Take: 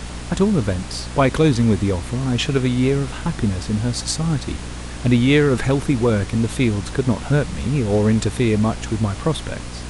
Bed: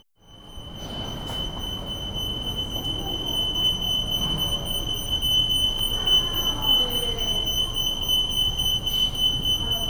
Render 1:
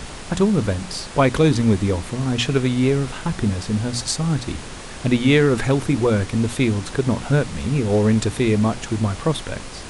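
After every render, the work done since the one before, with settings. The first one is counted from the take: notches 60/120/180/240/300 Hz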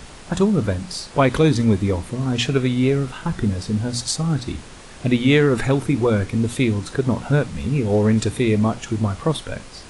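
noise print and reduce 6 dB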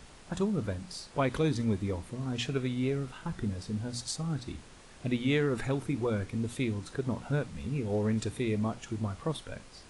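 gain -12.5 dB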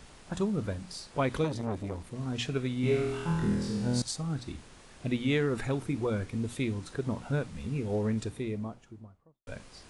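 1.44–2.16 core saturation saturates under 550 Hz; 2.81–4.02 flutter echo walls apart 4.2 m, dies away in 0.99 s; 7.83–9.47 studio fade out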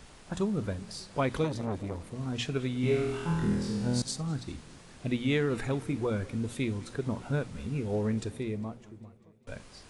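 warbling echo 0.201 s, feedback 65%, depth 174 cents, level -21.5 dB

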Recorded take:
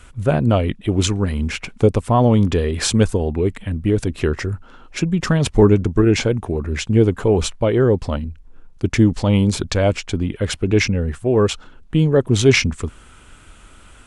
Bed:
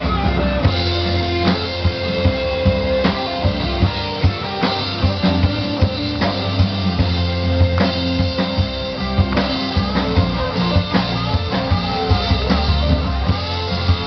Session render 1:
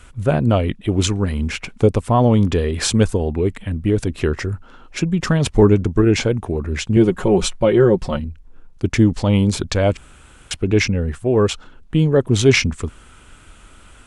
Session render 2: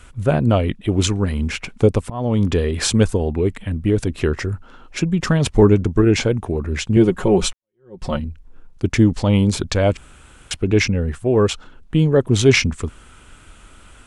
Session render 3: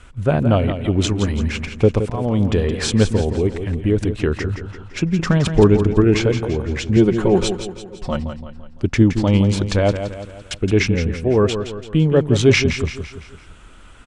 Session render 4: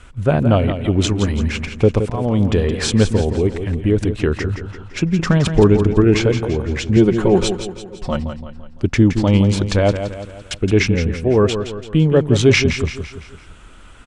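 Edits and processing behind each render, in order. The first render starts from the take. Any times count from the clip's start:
6.96–8.2 comb 5.5 ms, depth 76%; 9.97–10.51 room tone
2.1–2.5 fade in, from -22 dB; 7.53–8.05 fade in exponential
air absorption 51 m; feedback echo 0.169 s, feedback 47%, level -9 dB
gain +1.5 dB; limiter -2 dBFS, peak gain reduction 2 dB

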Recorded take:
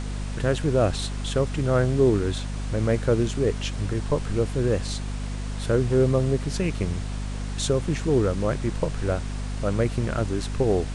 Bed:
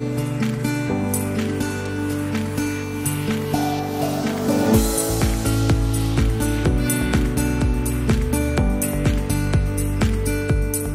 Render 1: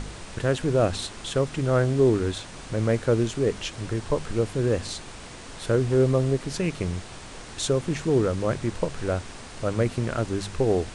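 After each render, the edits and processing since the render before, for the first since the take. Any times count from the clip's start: de-hum 50 Hz, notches 5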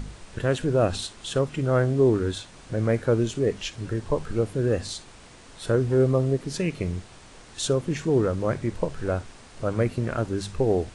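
noise print and reduce 7 dB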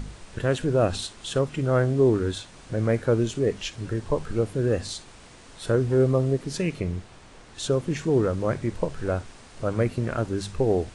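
6.8–7.73 high shelf 3900 Hz -6 dB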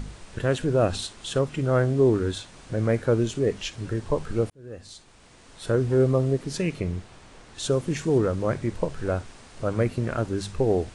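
4.5–5.85 fade in; 7.65–8.18 high shelf 7700 Hz +7.5 dB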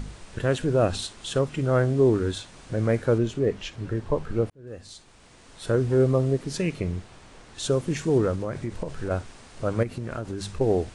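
3.18–4.67 high shelf 4400 Hz -10.5 dB; 8.35–9.11 compressor, threshold -25 dBFS; 9.83–10.61 compressor, threshold -27 dBFS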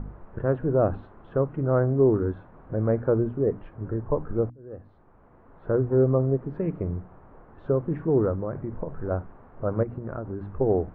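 LPF 1300 Hz 24 dB/oct; notches 60/120/180/240/300 Hz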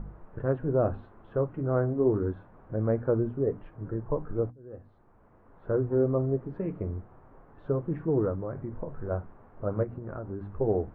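flange 0.25 Hz, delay 5.8 ms, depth 5.4 ms, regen -55%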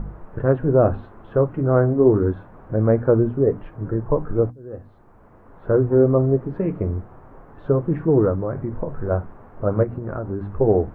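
gain +9.5 dB

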